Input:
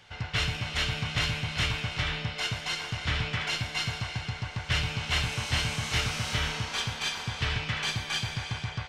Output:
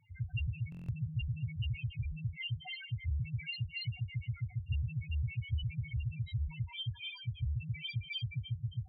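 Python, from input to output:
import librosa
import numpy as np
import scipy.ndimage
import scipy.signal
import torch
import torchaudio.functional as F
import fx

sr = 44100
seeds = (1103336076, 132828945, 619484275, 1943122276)

p1 = x + fx.echo_feedback(x, sr, ms=642, feedback_pct=35, wet_db=-22.0, dry=0)
p2 = fx.spec_topn(p1, sr, count=2)
y = fx.buffer_glitch(p2, sr, at_s=(0.7,), block=1024, repeats=7)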